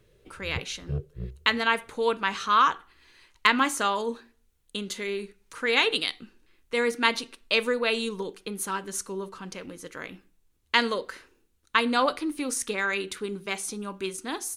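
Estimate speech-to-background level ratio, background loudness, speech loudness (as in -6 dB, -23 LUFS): 11.0 dB, -38.0 LUFS, -27.0 LUFS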